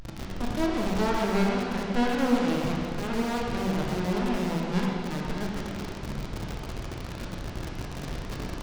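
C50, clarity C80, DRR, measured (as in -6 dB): -1.0 dB, 0.5 dB, -3.0 dB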